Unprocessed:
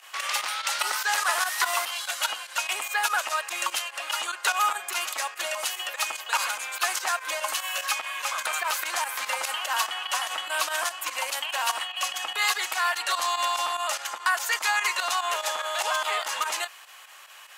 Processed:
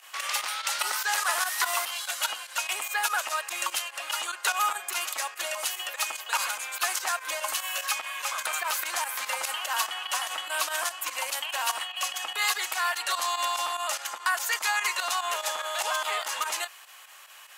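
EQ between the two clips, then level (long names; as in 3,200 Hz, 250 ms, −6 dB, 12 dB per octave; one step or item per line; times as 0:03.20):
high-shelf EQ 8,400 Hz +5.5 dB
−2.5 dB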